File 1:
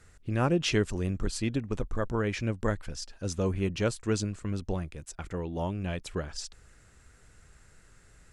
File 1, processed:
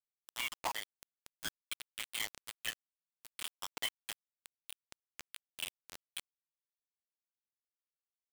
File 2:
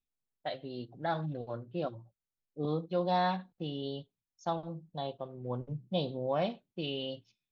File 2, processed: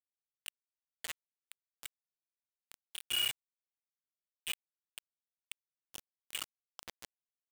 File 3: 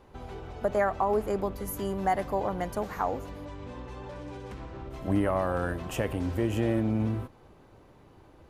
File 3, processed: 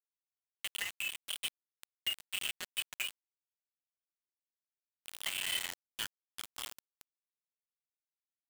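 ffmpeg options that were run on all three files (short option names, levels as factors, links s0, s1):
-filter_complex "[0:a]afftfilt=real='re*pow(10,20/40*sin(2*PI*(1.2*log(max(b,1)*sr/1024/100)/log(2)-(0.66)*(pts-256)/sr)))':imag='im*pow(10,20/40*sin(2*PI*(1.2*log(max(b,1)*sr/1024/100)/log(2)-(0.66)*(pts-256)/sr)))':win_size=1024:overlap=0.75,highpass=f=920:p=1,asplit=2[s0][s1];[s1]adelay=1574,volume=0.0398,highshelf=f=4000:g=-35.4[s2];[s0][s2]amix=inputs=2:normalize=0,anlmdn=0.251,acompressor=mode=upward:threshold=0.0251:ratio=2.5,lowpass=f=3100:t=q:w=0.5098,lowpass=f=3100:t=q:w=0.6013,lowpass=f=3100:t=q:w=0.9,lowpass=f=3100:t=q:w=2.563,afreqshift=-3600,flanger=delay=1.3:depth=9.3:regen=-23:speed=0.6:shape=triangular,acrusher=bits=4:mix=0:aa=0.000001,alimiter=level_in=1.33:limit=0.0631:level=0:latency=1:release=357,volume=0.75,volume=0.891"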